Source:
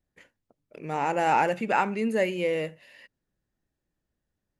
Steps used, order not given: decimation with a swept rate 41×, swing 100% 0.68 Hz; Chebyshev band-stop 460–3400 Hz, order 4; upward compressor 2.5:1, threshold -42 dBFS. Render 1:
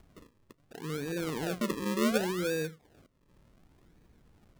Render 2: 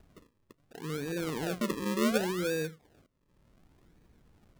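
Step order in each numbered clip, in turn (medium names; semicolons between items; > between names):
Chebyshev band-stop > decimation with a swept rate > upward compressor; upward compressor > Chebyshev band-stop > decimation with a swept rate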